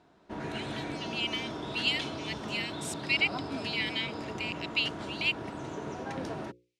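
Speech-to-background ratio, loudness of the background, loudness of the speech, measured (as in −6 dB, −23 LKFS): 5.5 dB, −38.0 LKFS, −32.5 LKFS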